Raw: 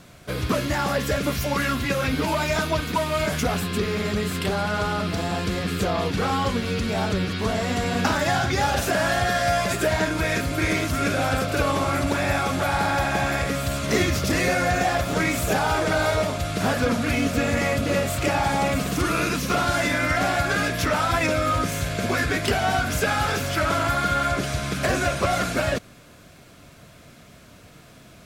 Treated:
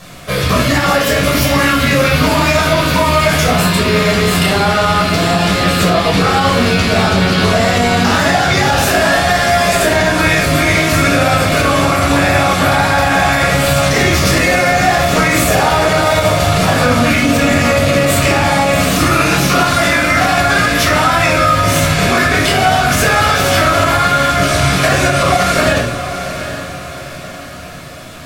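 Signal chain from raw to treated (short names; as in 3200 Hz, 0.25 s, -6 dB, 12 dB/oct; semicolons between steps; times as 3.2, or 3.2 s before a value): low shelf 470 Hz -8.5 dB; compressor, threshold -25 dBFS, peak gain reduction 6 dB; diffused feedback echo 0.795 s, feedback 45%, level -11 dB; shoebox room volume 790 m³, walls furnished, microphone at 5.9 m; maximiser +10.5 dB; gain -1 dB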